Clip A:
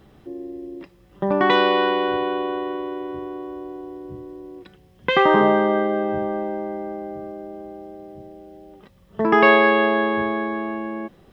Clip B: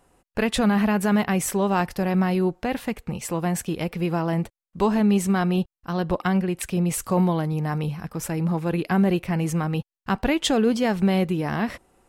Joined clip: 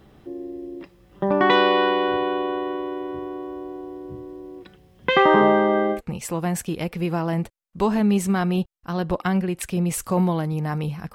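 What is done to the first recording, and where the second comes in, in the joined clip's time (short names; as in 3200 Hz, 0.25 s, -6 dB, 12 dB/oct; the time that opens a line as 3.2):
clip A
5.96 switch to clip B from 2.96 s, crossfade 0.10 s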